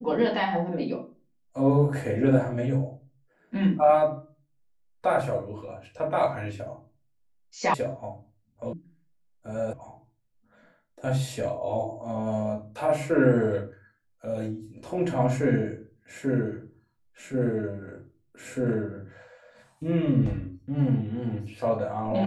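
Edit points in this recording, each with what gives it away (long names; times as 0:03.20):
0:07.74: cut off before it has died away
0:08.73: cut off before it has died away
0:09.73: cut off before it has died away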